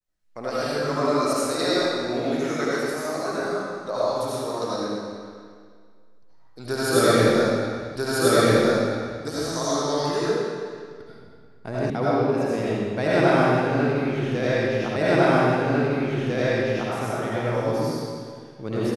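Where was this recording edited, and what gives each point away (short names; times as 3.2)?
7.96 repeat of the last 1.29 s
11.9 sound cut off
14.96 repeat of the last 1.95 s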